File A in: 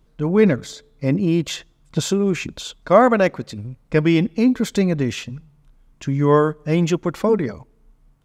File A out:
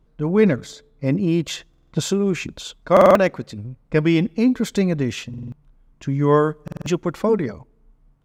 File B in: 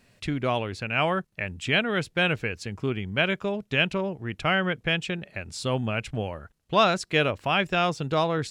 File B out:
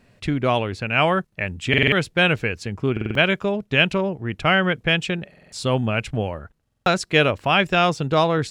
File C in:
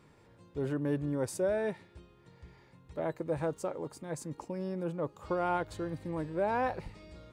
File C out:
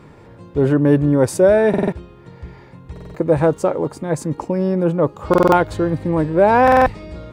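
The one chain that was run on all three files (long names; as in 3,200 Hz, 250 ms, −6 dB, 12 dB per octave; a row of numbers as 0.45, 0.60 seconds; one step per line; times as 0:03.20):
buffer that repeats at 0:01.69/0:02.92/0:05.29/0:06.63, samples 2,048, times 4
one half of a high-frequency compander decoder only
normalise the peak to −2 dBFS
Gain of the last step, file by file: −1.0, +6.0, +18.5 decibels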